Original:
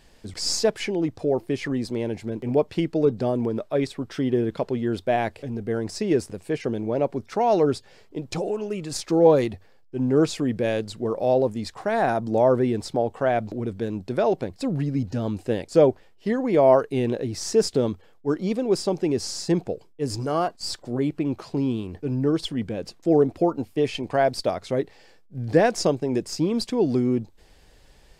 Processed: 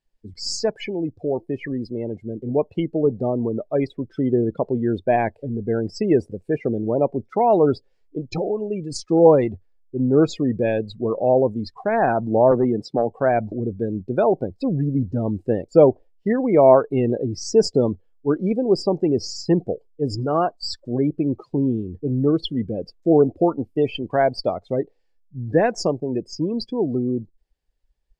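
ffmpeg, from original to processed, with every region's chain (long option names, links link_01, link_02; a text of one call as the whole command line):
ffmpeg -i in.wav -filter_complex "[0:a]asettb=1/sr,asplit=3[link_01][link_02][link_03];[link_01]atrim=end=12.514[link_04];[link_02]atrim=start=12.51:end=13.1,asetpts=PTS-STARTPTS,afade=type=in:duration=0.004:curve=qsin,afade=type=out:start_time=0.586:duration=0.004:curve=qsin,highpass=frequency=120:width=0.5412,highpass=frequency=120:width=1.3066,aeval=exprs='clip(val(0),-1,0.168)':channel_layout=same[link_05];[link_03]atrim=start=13.096[link_06];[link_04][link_05]acrossfade=duration=0.004:curve1=hsin:curve2=qsin[link_07];[link_07][link_06]acrossfade=duration=0.004:curve1=qsin:curve2=hsin,afftdn=noise_reduction=28:noise_floor=-31,dynaudnorm=framelen=660:gausssize=13:maxgain=11.5dB,volume=-1dB" out.wav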